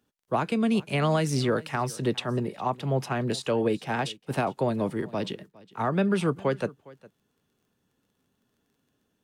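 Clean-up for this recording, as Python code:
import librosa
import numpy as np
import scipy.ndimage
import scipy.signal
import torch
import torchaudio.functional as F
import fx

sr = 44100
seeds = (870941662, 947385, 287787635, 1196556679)

y = fx.fix_declick_ar(x, sr, threshold=6.5)
y = fx.fix_echo_inverse(y, sr, delay_ms=409, level_db=-22.0)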